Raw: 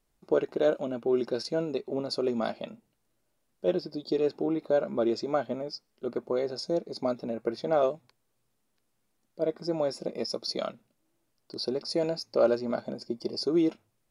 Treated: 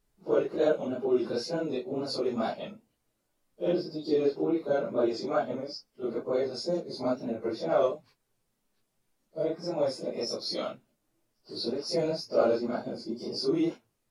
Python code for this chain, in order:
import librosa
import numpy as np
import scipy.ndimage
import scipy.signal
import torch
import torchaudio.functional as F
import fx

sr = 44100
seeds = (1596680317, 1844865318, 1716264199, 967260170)

y = fx.phase_scramble(x, sr, seeds[0], window_ms=100)
y = fx.wow_flutter(y, sr, seeds[1], rate_hz=2.1, depth_cents=52.0)